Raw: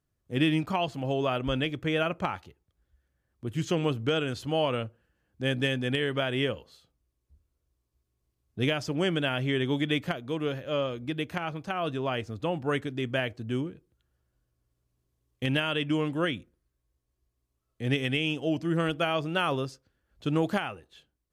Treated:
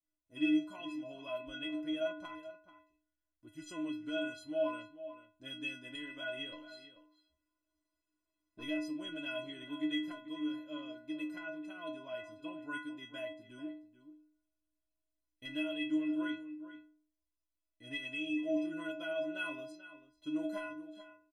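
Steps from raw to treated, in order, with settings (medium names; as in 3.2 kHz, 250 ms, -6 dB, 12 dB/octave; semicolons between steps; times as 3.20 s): 6.52–8.63 s: overdrive pedal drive 23 dB, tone 1.8 kHz, clips at -16.5 dBFS; inharmonic resonator 300 Hz, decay 0.61 s, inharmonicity 0.03; echo from a far wall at 75 m, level -13 dB; trim +5 dB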